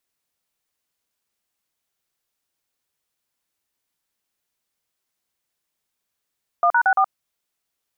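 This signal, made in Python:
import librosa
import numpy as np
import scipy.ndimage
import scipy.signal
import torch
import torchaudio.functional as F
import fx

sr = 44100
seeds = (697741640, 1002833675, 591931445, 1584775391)

y = fx.dtmf(sr, digits='1#64', tone_ms=72, gap_ms=42, level_db=-16.0)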